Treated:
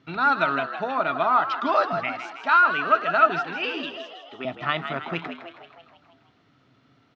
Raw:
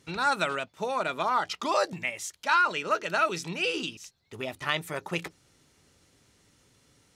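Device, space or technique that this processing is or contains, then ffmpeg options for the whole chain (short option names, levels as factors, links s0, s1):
frequency-shifting delay pedal into a guitar cabinet: -filter_complex "[0:a]asplit=8[s0][s1][s2][s3][s4][s5][s6][s7];[s1]adelay=160,afreqshift=84,volume=0.335[s8];[s2]adelay=320,afreqshift=168,volume=0.195[s9];[s3]adelay=480,afreqshift=252,volume=0.112[s10];[s4]adelay=640,afreqshift=336,volume=0.0653[s11];[s5]adelay=800,afreqshift=420,volume=0.038[s12];[s6]adelay=960,afreqshift=504,volume=0.0219[s13];[s7]adelay=1120,afreqshift=588,volume=0.0127[s14];[s0][s8][s9][s10][s11][s12][s13][s14]amix=inputs=8:normalize=0,highpass=97,equalizer=f=130:t=q:w=4:g=8,equalizer=f=270:t=q:w=4:g=9,equalizer=f=670:t=q:w=4:g=10,equalizer=f=1300:t=q:w=4:g=9,lowpass=f=3900:w=0.5412,lowpass=f=3900:w=1.3066,asettb=1/sr,asplit=3[s15][s16][s17];[s15]atrim=end=3.394[s18];[s16]atrim=start=3.39:end=4.45,asetpts=PTS-STARTPTS,afade=t=in:d=0.004:c=qsin,afade=t=out:st=1.056:d=0.004:c=qsin,highpass=290[s19];[s17]atrim=start=4.446[s20];[s18][s19]acrossfade=d=0.004:c1=hsin:c2=qsin[s21];[s21][s20]acrossfade=d=0.004:c1=qsin:c2=hsin,equalizer=f=540:t=o:w=0.44:g=-5.5"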